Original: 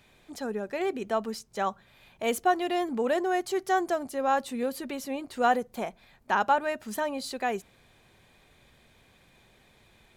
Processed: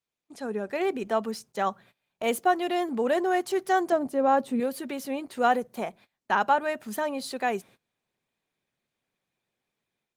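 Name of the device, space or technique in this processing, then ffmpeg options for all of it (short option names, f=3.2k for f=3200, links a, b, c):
video call: -filter_complex "[0:a]asettb=1/sr,asplit=3[a][b][c];[a]atrim=end=3.924[d];[b]atrim=start=3.92:end=4.6,asetpts=PTS-STARTPTS,afade=t=in:d=0.004:c=qsin,afade=t=out:st=0.676:d=0.004:c=qsin,tiltshelf=f=1.1k:g=6.5[e];[c]atrim=start=4.596[f];[d][e]acrossfade=d=0.004:c1=hsin:c2=qsin[g];[g][f]acrossfade=d=0.004:c1=qsin:c2=hsin,highpass=f=120:w=0.5412,highpass=f=120:w=1.3066,dynaudnorm=f=270:g=3:m=10dB,agate=range=-24dB:threshold=-42dB:ratio=16:detection=peak,volume=-7.5dB" -ar 48000 -c:a libopus -b:a 24k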